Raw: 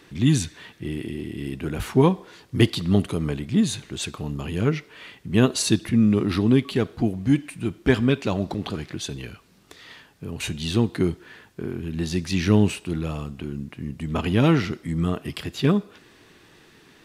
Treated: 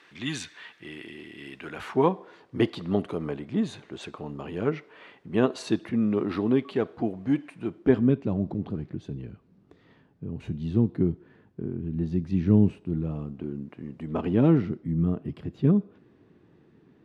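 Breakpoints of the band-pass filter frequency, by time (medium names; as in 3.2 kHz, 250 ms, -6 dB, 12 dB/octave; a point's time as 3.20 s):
band-pass filter, Q 0.71
1.65 s 1.7 kHz
2.14 s 650 Hz
7.64 s 650 Hz
8.21 s 170 Hz
12.96 s 170 Hz
13.89 s 610 Hz
14.80 s 180 Hz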